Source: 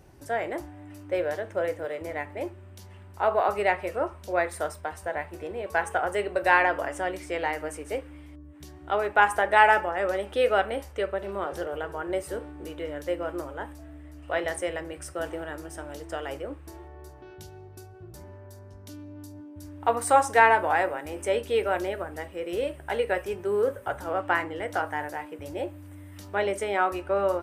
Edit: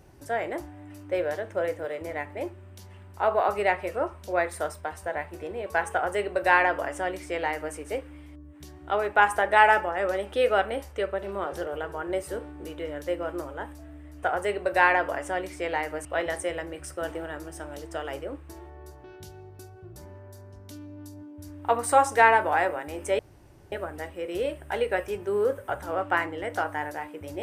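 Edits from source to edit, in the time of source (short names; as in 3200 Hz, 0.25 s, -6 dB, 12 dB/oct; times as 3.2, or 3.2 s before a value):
5.93–7.75 copy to 14.23
21.37–21.9 room tone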